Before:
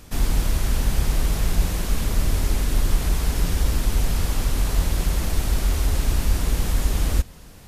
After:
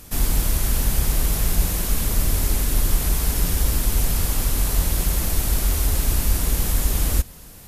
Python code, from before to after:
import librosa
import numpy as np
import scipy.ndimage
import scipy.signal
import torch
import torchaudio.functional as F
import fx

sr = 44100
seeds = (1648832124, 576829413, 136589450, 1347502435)

y = fx.peak_eq(x, sr, hz=13000.0, db=11.5, octaves=1.2)